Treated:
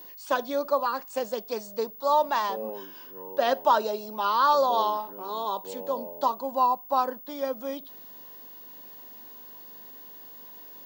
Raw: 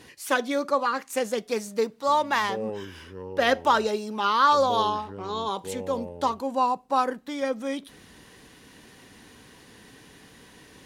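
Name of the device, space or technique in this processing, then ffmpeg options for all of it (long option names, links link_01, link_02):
old television with a line whistle: -af "highpass=frequency=200:width=0.5412,highpass=frequency=200:width=1.3066,equalizer=frequency=630:width_type=q:width=4:gain=10,equalizer=frequency=970:width_type=q:width=4:gain=8,equalizer=frequency=2100:width_type=q:width=4:gain=-8,equalizer=frequency=4500:width_type=q:width=4:gain=5,lowpass=frequency=8000:width=0.5412,lowpass=frequency=8000:width=1.3066,aeval=exprs='val(0)+0.0141*sin(2*PI*15625*n/s)':channel_layout=same,volume=-6dB"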